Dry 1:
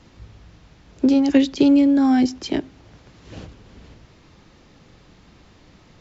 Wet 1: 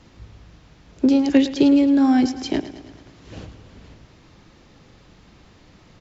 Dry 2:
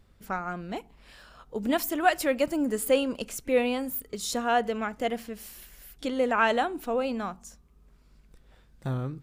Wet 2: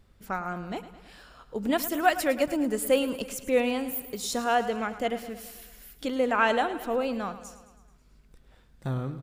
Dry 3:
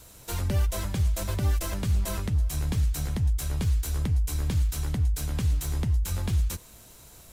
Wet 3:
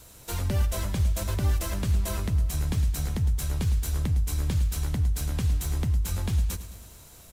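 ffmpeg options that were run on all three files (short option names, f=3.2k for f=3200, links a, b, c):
-af "aecho=1:1:108|216|324|432|540|648:0.2|0.12|0.0718|0.0431|0.0259|0.0155"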